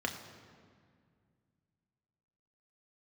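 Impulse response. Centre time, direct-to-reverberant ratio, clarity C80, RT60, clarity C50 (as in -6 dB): 30 ms, 2.5 dB, 9.0 dB, 2.1 s, 8.5 dB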